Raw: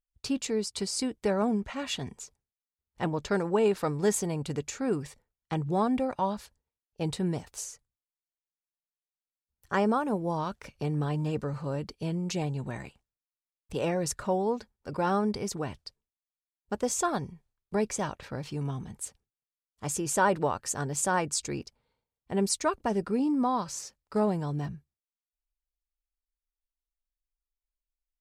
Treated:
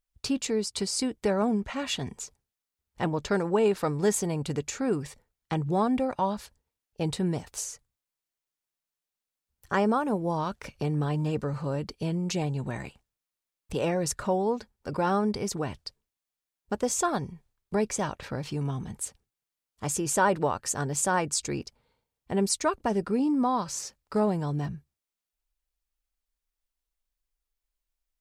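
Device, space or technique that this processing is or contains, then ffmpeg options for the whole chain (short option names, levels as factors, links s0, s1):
parallel compression: -filter_complex "[0:a]asplit=2[s0][s1];[s1]acompressor=threshold=0.0112:ratio=6,volume=0.891[s2];[s0][s2]amix=inputs=2:normalize=0"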